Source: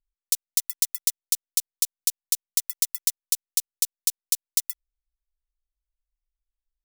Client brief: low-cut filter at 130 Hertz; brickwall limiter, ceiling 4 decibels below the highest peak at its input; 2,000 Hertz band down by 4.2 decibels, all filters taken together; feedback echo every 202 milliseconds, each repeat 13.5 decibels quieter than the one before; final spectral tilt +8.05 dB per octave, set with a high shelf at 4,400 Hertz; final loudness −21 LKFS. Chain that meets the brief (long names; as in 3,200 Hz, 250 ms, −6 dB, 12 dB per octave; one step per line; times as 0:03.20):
high-pass filter 130 Hz
parametric band 2,000 Hz −6.5 dB
high-shelf EQ 4,400 Hz +4 dB
brickwall limiter −4.5 dBFS
repeating echo 202 ms, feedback 21%, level −13.5 dB
level +2.5 dB